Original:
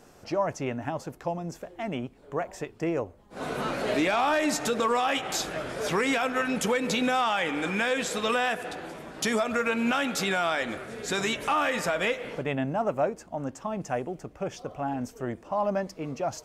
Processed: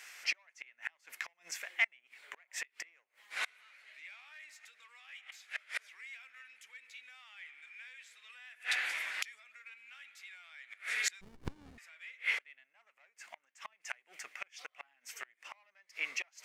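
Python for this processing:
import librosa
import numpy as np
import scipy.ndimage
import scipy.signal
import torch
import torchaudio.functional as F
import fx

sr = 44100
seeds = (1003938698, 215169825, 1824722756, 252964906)

p1 = 10.0 ** (-28.5 / 20.0) * np.tanh(x / 10.0 ** (-28.5 / 20.0))
p2 = x + (p1 * 10.0 ** (-3.0 / 20.0))
p3 = fx.gate_flip(p2, sr, shuts_db=-21.0, range_db=-32)
p4 = fx.highpass_res(p3, sr, hz=2100.0, q=4.1)
p5 = fx.running_max(p4, sr, window=65, at=(11.21, 11.78))
y = p5 * 10.0 ** (1.0 / 20.0)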